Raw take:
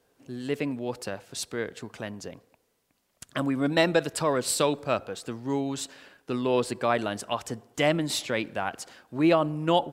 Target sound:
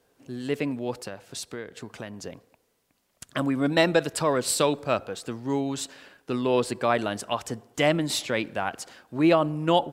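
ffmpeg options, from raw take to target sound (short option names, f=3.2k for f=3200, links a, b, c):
-filter_complex "[0:a]asplit=3[a][b][c];[a]afade=t=out:st=1:d=0.02[d];[b]acompressor=threshold=-34dB:ratio=6,afade=t=in:st=1:d=0.02,afade=t=out:st=2.2:d=0.02[e];[c]afade=t=in:st=2.2:d=0.02[f];[d][e][f]amix=inputs=3:normalize=0,volume=1.5dB"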